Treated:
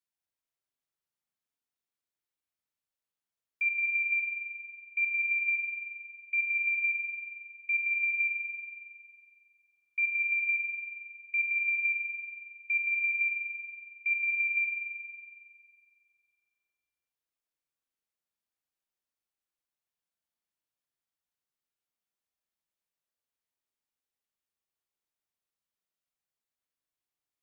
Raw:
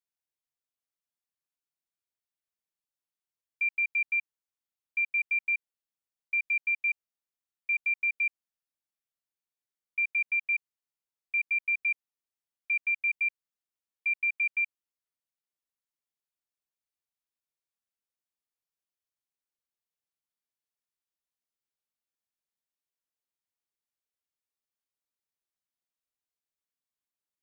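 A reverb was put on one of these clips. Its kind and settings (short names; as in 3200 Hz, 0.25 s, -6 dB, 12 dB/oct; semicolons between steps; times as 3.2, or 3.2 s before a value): spring tank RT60 2.1 s, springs 38 ms, chirp 30 ms, DRR 1 dB; gain -1.5 dB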